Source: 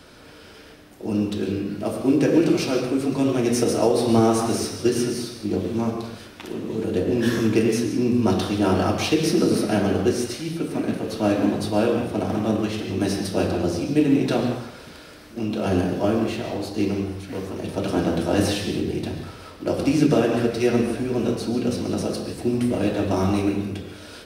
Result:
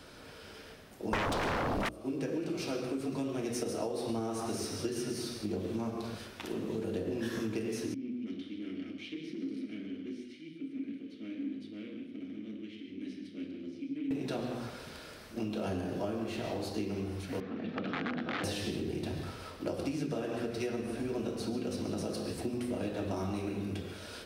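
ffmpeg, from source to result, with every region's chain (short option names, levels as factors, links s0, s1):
-filter_complex "[0:a]asettb=1/sr,asplit=3[s0][s1][s2];[s0]atrim=end=1.134[s3];[s1]atrim=start=1.13:end=1.89,asetpts=PTS-STARTPTS,afade=t=in:d=0.004:c=qsin,afade=t=out:st=0.756:d=0.004:c=qsin,lowshelf=f=410:g=8.5,acontrast=85,aeval=exprs='0.708*sin(PI/2*6.31*val(0)/0.708)':c=same[s4];[s2]atrim=start=1.886[s5];[s3][s4]acrossfade=d=0.004:c1=hsin:c2=qsin[s6];[s6][s5]acrossfade=d=0.004:c1=qsin:c2=hsin,asettb=1/sr,asplit=3[s7][s8][s9];[s7]atrim=end=7.944[s10];[s8]atrim=start=7.94:end=14.11,asetpts=PTS-STARTPTS,afade=t=in:d=0.004:c=qsin,afade=t=out:st=6.166:d=0.004:c=qsin,aeval=exprs='(tanh(8.91*val(0)+0.5)-tanh(0.5))/8.91':c=same,asplit=3[s11][s12][s13];[s11]bandpass=f=270:t=q:w=8,volume=1[s14];[s12]bandpass=f=2290:t=q:w=8,volume=0.501[s15];[s13]bandpass=f=3010:t=q:w=8,volume=0.355[s16];[s14][s15][s16]amix=inputs=3:normalize=0[s17];[s9]atrim=start=14.106[s18];[s10][s17]acrossfade=d=0.004:c1=hsin:c2=qsin[s19];[s19][s18]acrossfade=d=0.004:c1=qsin:c2=hsin,asettb=1/sr,asplit=3[s20][s21][s22];[s20]atrim=end=17.404[s23];[s21]atrim=start=17.4:end=18.44,asetpts=PTS-STARTPTS,afade=t=in:d=0.004:c=qsin,afade=t=out:st=1.036:d=0.004:c=qsin,aeval=exprs='(mod(5.96*val(0)+1,2)-1)/5.96':c=same,highpass=210,equalizer=f=240:t=q:w=4:g=8,equalizer=f=370:t=q:w=4:g=-9,equalizer=f=590:t=q:w=4:g=-9,equalizer=f=940:t=q:w=4:g=-10,equalizer=f=2800:t=q:w=4:g=-5,lowpass=f=3200:w=0.5412,lowpass=f=3200:w=1.3066[s24];[s22]atrim=start=18.436[s25];[s23][s24]acrossfade=d=0.004:c1=hsin:c2=qsin[s26];[s26][s25]acrossfade=d=0.004:c1=qsin:c2=hsin,bandreject=f=60:t=h:w=6,bandreject=f=120:t=h:w=6,bandreject=f=180:t=h:w=6,bandreject=f=240:t=h:w=6,bandreject=f=300:t=h:w=6,bandreject=f=360:t=h:w=6,acompressor=threshold=0.0447:ratio=10,volume=0.596"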